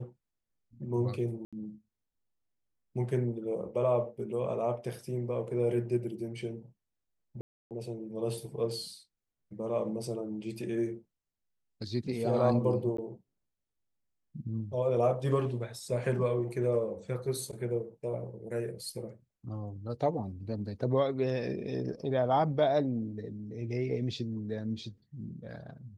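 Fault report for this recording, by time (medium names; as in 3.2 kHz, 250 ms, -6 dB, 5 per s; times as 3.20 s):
1.45–1.53 s: dropout 76 ms
7.41–7.71 s: dropout 298 ms
12.97–12.98 s: dropout 14 ms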